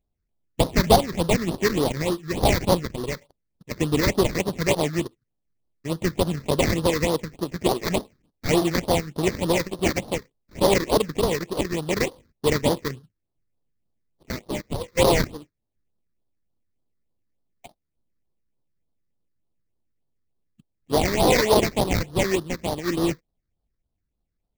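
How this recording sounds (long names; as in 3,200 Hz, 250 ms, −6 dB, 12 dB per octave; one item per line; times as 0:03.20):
aliases and images of a low sample rate 1,500 Hz, jitter 20%
phaser sweep stages 6, 3.4 Hz, lowest notch 740–2,300 Hz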